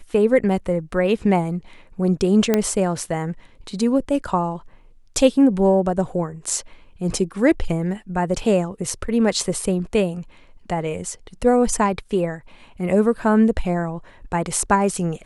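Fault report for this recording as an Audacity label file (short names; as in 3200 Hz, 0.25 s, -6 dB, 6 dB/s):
2.540000	2.540000	pop -4 dBFS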